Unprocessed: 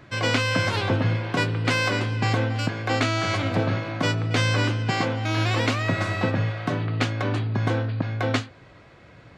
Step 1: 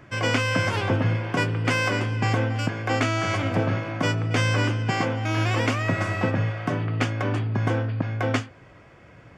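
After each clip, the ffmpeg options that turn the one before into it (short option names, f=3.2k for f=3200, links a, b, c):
-af "equalizer=f=4k:t=o:w=0.25:g=-14"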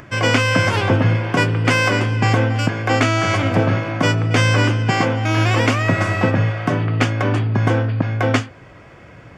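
-af "acompressor=mode=upward:threshold=-46dB:ratio=2.5,volume=7dB"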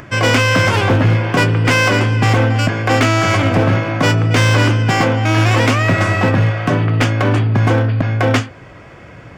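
-af "asoftclip=type=hard:threshold=-12.5dB,volume=4.5dB"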